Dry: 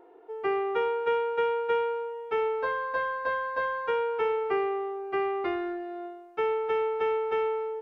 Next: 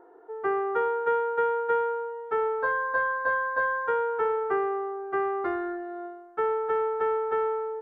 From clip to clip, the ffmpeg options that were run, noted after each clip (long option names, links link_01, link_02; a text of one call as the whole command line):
ffmpeg -i in.wav -af "highshelf=frequency=2000:width_type=q:width=3:gain=-7.5" out.wav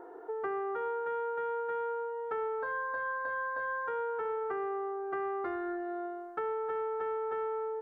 ffmpeg -i in.wav -af "alimiter=limit=-22dB:level=0:latency=1:release=221,acompressor=threshold=-41dB:ratio=3,volume=5dB" out.wav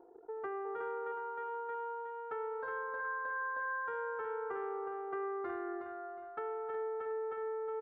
ffmpeg -i in.wav -af "anlmdn=0.0631,aecho=1:1:365|730|1095|1460:0.447|0.161|0.0579|0.0208,volume=-5.5dB" out.wav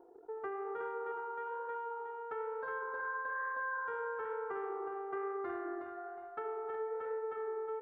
ffmpeg -i in.wav -af "flanger=delay=7.5:depth=7.6:regen=-77:speed=1.1:shape=sinusoidal,volume=4dB" out.wav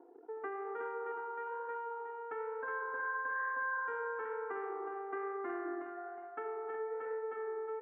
ffmpeg -i in.wav -af "highpass=frequency=190:width=0.5412,highpass=frequency=190:width=1.3066,equalizer=frequency=190:width_type=q:width=4:gain=-8,equalizer=frequency=270:width_type=q:width=4:gain=4,equalizer=frequency=400:width_type=q:width=4:gain=-5,equalizer=frequency=580:width_type=q:width=4:gain=-8,equalizer=frequency=880:width_type=q:width=4:gain=-4,equalizer=frequency=1300:width_type=q:width=4:gain=-5,lowpass=frequency=2500:width=0.5412,lowpass=frequency=2500:width=1.3066,volume=4dB" out.wav